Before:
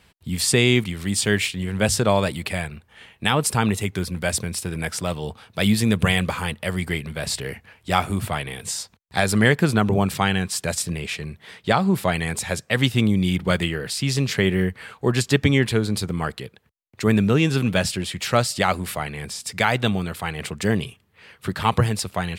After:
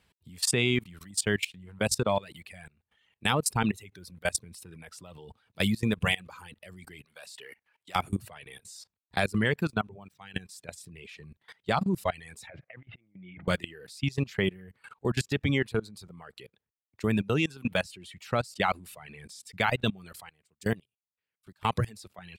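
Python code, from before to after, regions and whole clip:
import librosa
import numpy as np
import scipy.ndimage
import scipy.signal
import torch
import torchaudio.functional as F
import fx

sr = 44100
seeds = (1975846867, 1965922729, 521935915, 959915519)

y = fx.chain(x, sr, fx.highpass(hz=850.0, slope=6),
    fx.overload_stage(gain_db=15.5), at=(7.05, 7.96))
y = fx.chain(y, sr, fx.median_filter(points=3),
    fx.upward_expand(threshold_db=-29.0, expansion=2.5), at=(9.7, 10.34))
y = fx.chain(y, sr, fx.over_compress(threshold_db=-27.0, ratio=-0.5),
    fx.cabinet(low_hz=110.0, low_slope=12, high_hz=2400.0, hz=(220.0, 420.0, 660.0, 1000.0, 2100.0), db=(-8, -7, 7, -4, 8)), at=(12.47, 13.48))
y = fx.chain(y, sr, fx.high_shelf(hz=5500.0, db=5.5),
    fx.upward_expand(threshold_db=-33.0, expansion=2.5), at=(20.29, 21.63))
y = fx.dynamic_eq(y, sr, hz=2600.0, q=7.2, threshold_db=-43.0, ratio=4.0, max_db=3)
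y = fx.dereverb_blind(y, sr, rt60_s=1.5)
y = fx.level_steps(y, sr, step_db=22)
y = y * librosa.db_to_amplitude(-3.0)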